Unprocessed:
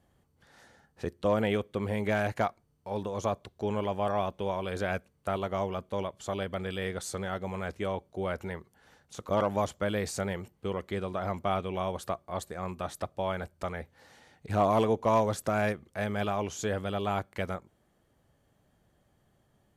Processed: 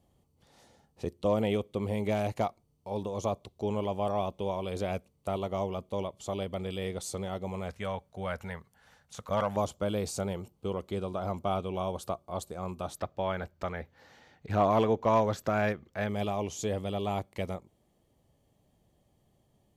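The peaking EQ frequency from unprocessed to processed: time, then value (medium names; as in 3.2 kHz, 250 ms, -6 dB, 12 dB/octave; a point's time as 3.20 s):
peaking EQ -14.5 dB 0.58 oct
1.6 kHz
from 7.69 s 340 Hz
from 9.56 s 1.8 kHz
from 12.96 s 9.6 kHz
from 16.09 s 1.5 kHz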